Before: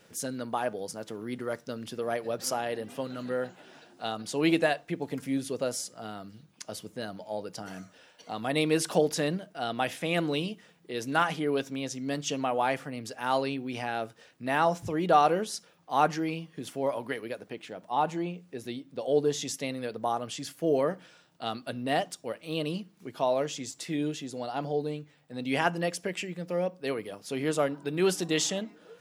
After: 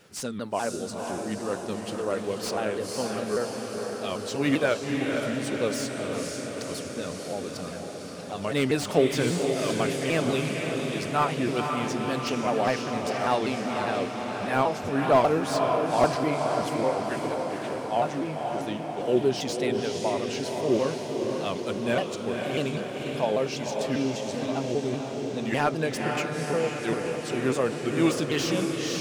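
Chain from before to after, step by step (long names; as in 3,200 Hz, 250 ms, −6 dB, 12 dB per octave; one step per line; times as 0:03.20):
pitch shifter swept by a sawtooth −4 semitones, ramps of 198 ms
feedback delay with all-pass diffusion 510 ms, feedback 68%, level −4.5 dB
slew-rate limiting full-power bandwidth 110 Hz
level +3 dB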